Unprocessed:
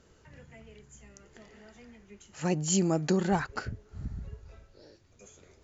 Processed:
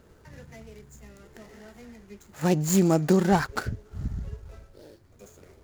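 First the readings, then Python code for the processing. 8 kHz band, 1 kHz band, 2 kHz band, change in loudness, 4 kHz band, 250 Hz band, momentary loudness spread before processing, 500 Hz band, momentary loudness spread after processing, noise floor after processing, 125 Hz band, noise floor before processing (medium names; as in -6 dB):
no reading, +6.0 dB, +5.0 dB, +5.5 dB, +1.0 dB, +6.0 dB, 17 LU, +6.0 dB, 16 LU, -56 dBFS, +6.0 dB, -62 dBFS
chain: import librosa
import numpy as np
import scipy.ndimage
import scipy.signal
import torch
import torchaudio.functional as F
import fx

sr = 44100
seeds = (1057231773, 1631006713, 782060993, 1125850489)

y = scipy.signal.medfilt(x, 15)
y = fx.high_shelf(y, sr, hz=4000.0, db=8.5)
y = F.gain(torch.from_numpy(y), 6.0).numpy()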